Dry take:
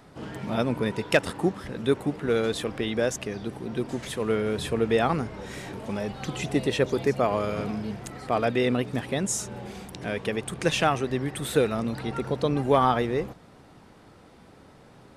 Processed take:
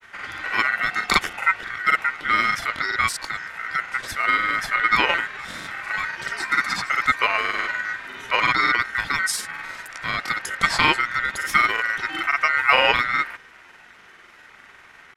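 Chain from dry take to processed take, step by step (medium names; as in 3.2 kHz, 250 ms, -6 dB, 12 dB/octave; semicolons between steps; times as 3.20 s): ring modulator 1.7 kHz; granulator, grains 20 per s, spray 37 ms, pitch spread up and down by 0 st; trim +8 dB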